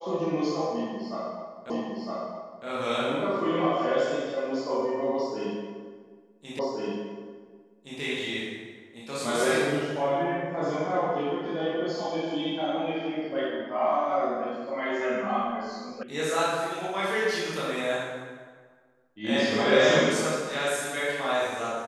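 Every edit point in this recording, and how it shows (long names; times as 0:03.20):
0:01.70: the same again, the last 0.96 s
0:06.59: the same again, the last 1.42 s
0:16.03: cut off before it has died away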